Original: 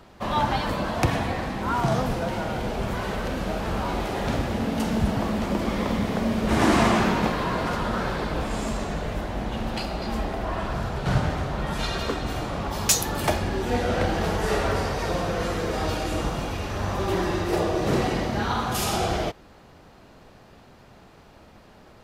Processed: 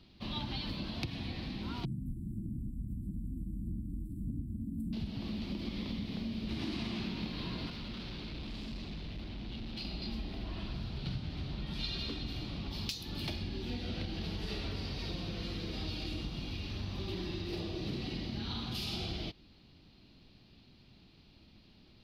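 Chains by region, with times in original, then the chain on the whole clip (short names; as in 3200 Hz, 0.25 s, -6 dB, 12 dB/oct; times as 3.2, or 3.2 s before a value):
1.85–4.93 brick-wall FIR band-stop 340–7400 Hz + phaser 1.6 Hz, delay 2.1 ms, feedback 32%
7.7–9.85 high shelf 7800 Hz -8 dB + overloaded stage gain 30.5 dB
whole clip: band shelf 900 Hz -13.5 dB 2.4 oct; compressor, threshold -27 dBFS; resonant high shelf 5700 Hz -9.5 dB, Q 3; gain -7.5 dB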